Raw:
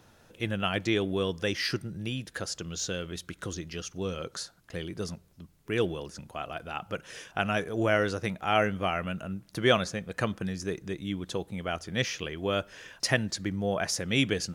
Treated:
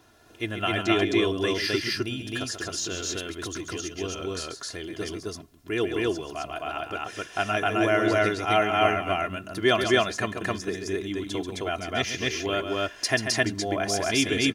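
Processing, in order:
low-shelf EQ 64 Hz −10 dB
comb filter 2.9 ms, depth 68%
on a send: loudspeakers that aren't time-aligned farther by 47 metres −8 dB, 90 metres 0 dB

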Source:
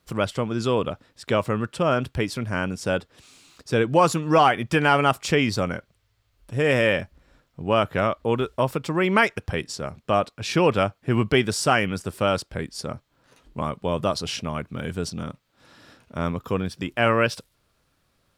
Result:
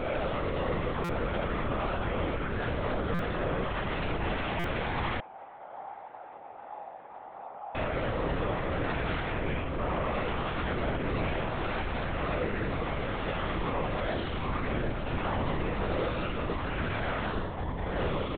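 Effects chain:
peak hold with a rise ahead of every peak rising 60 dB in 1.58 s
wave folding −18.5 dBFS
delay with pitch and tempo change per echo 223 ms, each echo −2 semitones, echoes 3
comb filter 6 ms, depth 63%
output level in coarse steps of 14 dB
brickwall limiter −25.5 dBFS, peak gain reduction 10 dB
high-frequency loss of the air 310 metres
flutter between parallel walls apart 4.3 metres, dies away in 0.76 s
linear-prediction vocoder at 8 kHz whisper
0:05.20–0:07.75: resonant band-pass 810 Hz, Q 7
buffer that repeats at 0:01.04/0:03.14/0:04.59, samples 256, times 8

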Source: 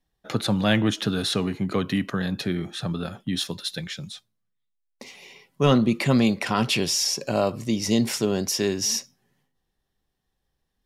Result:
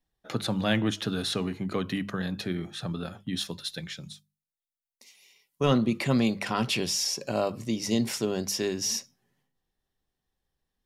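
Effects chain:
0:04.13–0:05.61: first-order pre-emphasis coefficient 0.9
mains-hum notches 50/100/150/200 Hz
level −4.5 dB

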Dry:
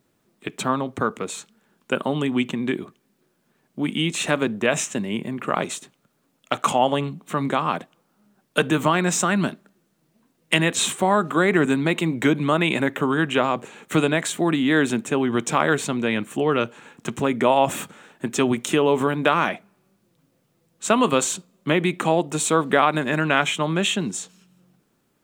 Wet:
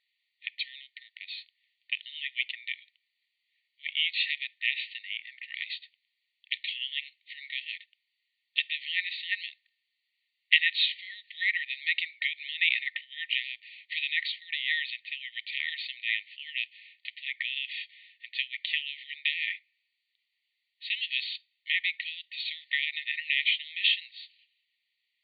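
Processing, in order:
linear-phase brick-wall band-pass 1,800–4,700 Hz

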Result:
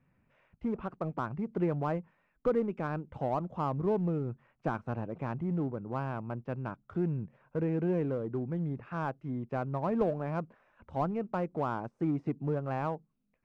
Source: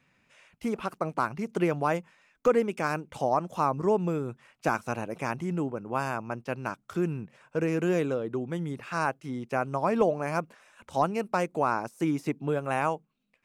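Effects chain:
Bessel low-pass filter 1,200 Hz, order 2
low-shelf EQ 150 Hz +12 dB
in parallel at −8 dB: hard clipping −27.5 dBFS, distortion −7 dB
on the sum: level −7.5 dB

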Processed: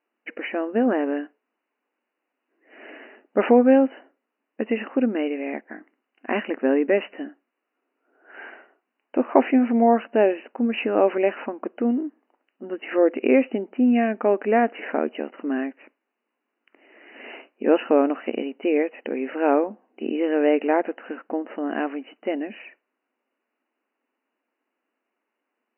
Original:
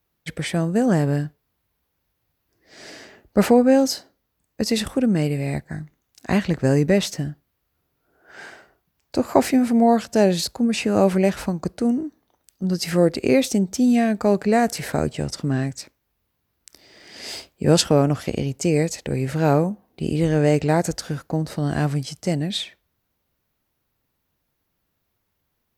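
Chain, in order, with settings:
linear-phase brick-wall band-pass 220–3,000 Hz

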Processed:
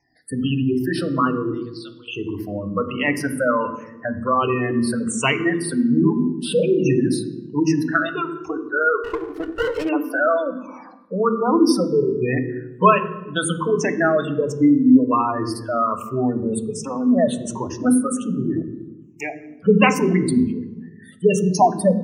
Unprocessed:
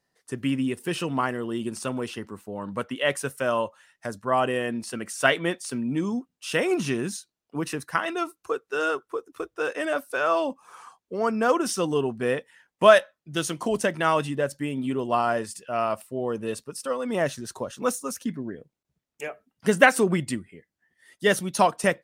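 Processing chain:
rippled gain that drifts along the octave scale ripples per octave 0.73, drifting −1.3 Hz, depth 15 dB
in parallel at −3 dB: downward compressor 10 to 1, threshold −30 dBFS, peak gain reduction 20.5 dB
0:01.51–0:02.08: on the sum: resonant band-pass 4,200 Hz, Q 4
0:02.82–0:03.29: slack as between gear wheels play −40 dBFS
gate on every frequency bin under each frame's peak −15 dB strong
on a send at −8 dB: convolution reverb RT60 1.1 s, pre-delay 3 ms
0:09.04–0:09.89: on the sum: windowed peak hold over 9 samples

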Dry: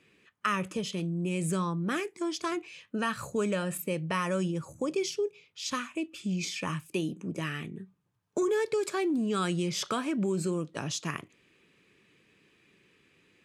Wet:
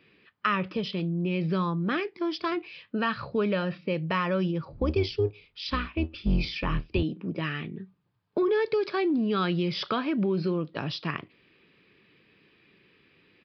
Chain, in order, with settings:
0:04.72–0:07.03: sub-octave generator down 2 octaves, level +3 dB
downsampling to 11,025 Hz
level +3 dB

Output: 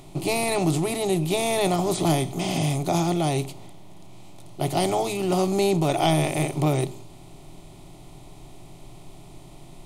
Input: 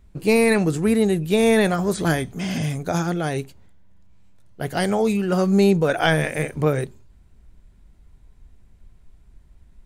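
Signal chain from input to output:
compressor on every frequency bin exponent 0.6
phaser with its sweep stopped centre 320 Hz, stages 8
level −1 dB

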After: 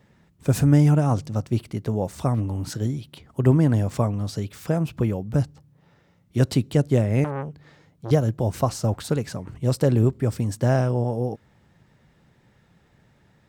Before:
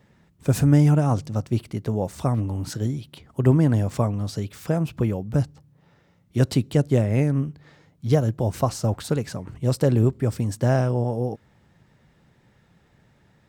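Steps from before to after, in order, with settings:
0:07.24–0:08.11: saturating transformer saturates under 930 Hz

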